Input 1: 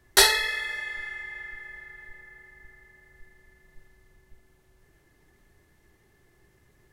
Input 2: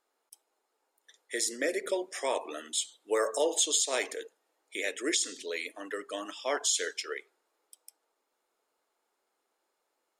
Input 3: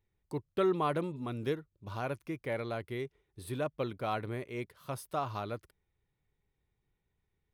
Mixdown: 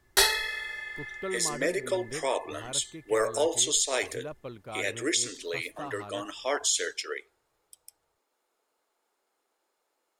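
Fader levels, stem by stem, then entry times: −4.5, +2.0, −6.0 decibels; 0.00, 0.00, 0.65 seconds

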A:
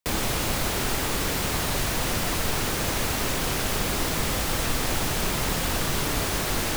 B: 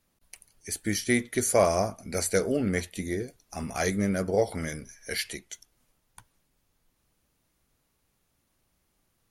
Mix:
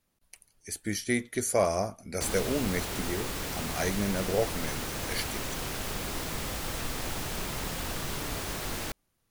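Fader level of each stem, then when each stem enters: −8.5, −3.5 decibels; 2.15, 0.00 seconds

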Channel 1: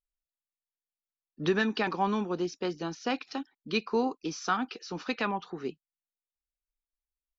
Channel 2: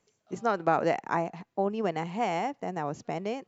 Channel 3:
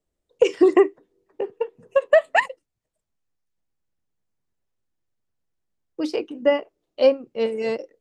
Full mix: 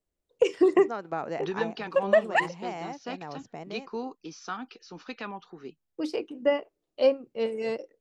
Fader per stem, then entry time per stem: −7.0, −7.5, −5.5 decibels; 0.00, 0.45, 0.00 seconds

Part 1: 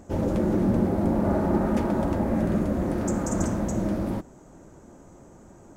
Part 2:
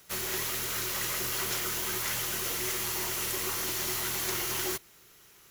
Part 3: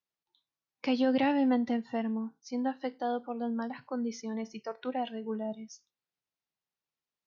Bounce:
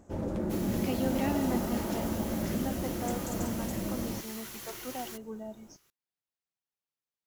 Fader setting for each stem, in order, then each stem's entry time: −8.5, −12.0, −6.0 decibels; 0.00, 0.40, 0.00 seconds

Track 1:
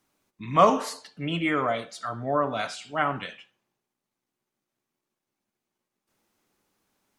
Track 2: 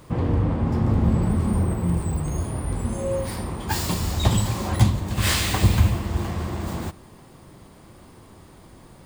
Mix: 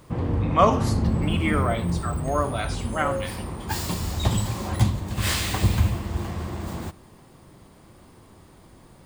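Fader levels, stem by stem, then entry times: 0.0, −3.0 decibels; 0.00, 0.00 seconds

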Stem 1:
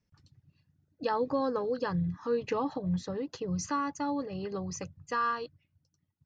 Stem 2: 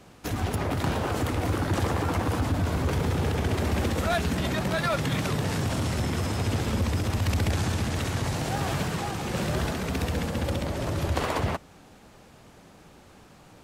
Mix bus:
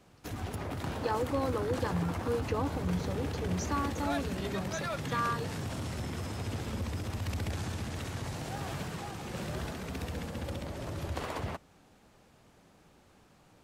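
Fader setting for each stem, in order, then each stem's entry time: −2.5, −9.5 decibels; 0.00, 0.00 seconds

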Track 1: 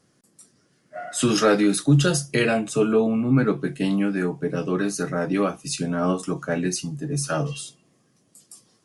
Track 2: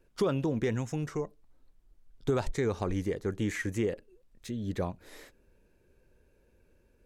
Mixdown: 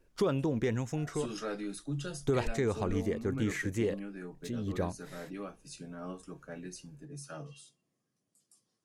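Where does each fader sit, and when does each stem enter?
−19.5, −1.0 decibels; 0.00, 0.00 seconds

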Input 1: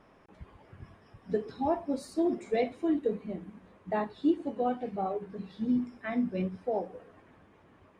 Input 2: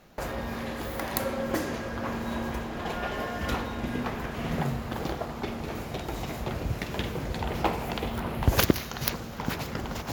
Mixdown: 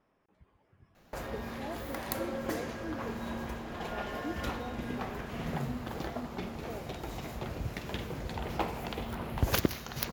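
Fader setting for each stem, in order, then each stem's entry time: −13.5, −6.0 decibels; 0.00, 0.95 seconds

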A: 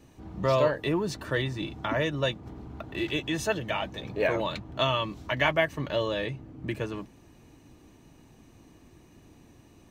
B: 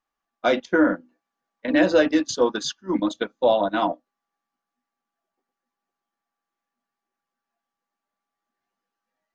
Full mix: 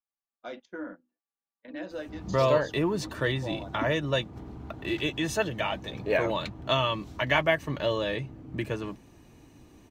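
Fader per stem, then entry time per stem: +0.5, −20.0 decibels; 1.90, 0.00 seconds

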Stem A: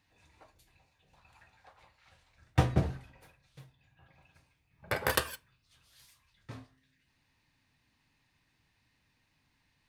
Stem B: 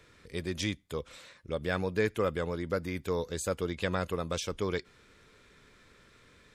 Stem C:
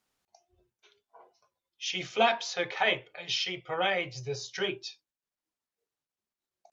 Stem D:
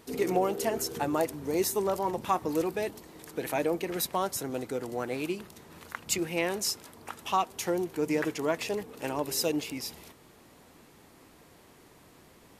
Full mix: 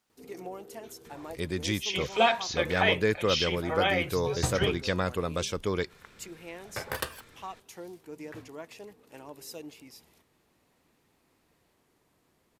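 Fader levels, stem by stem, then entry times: −4.5, +2.5, +1.5, −14.0 decibels; 1.85, 1.05, 0.00, 0.10 seconds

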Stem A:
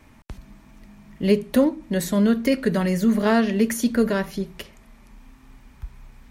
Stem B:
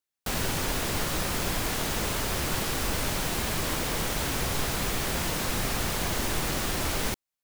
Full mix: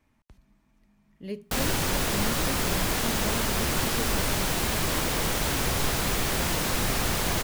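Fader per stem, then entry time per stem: −17.0, +2.5 decibels; 0.00, 1.25 seconds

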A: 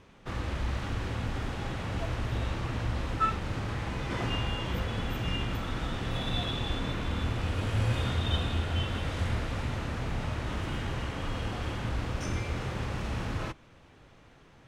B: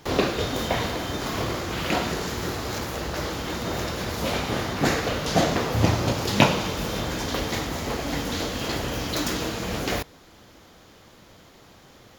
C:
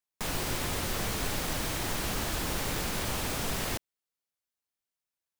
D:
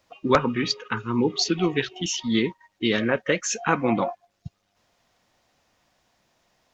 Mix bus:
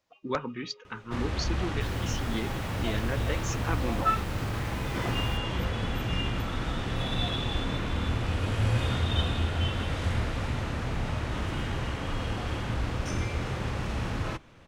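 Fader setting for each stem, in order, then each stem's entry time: +2.0 dB, muted, −14.5 dB, −11.5 dB; 0.85 s, muted, 1.60 s, 0.00 s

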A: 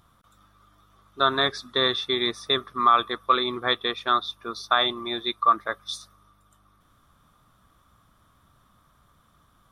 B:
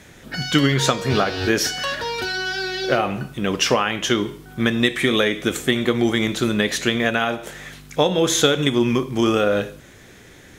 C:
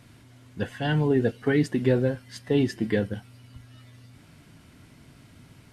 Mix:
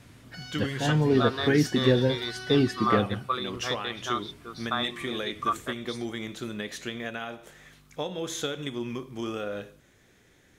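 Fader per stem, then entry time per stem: −8.5, −15.0, 0.0 decibels; 0.00, 0.00, 0.00 seconds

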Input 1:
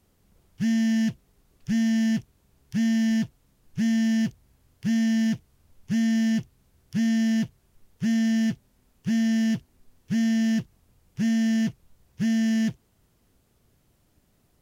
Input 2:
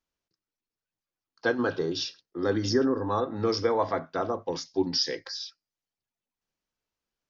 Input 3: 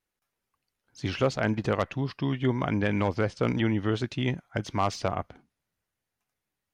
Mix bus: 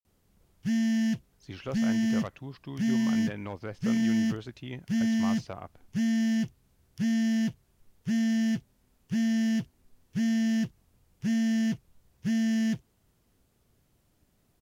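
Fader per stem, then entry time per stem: −3.5 dB, muted, −11.5 dB; 0.05 s, muted, 0.45 s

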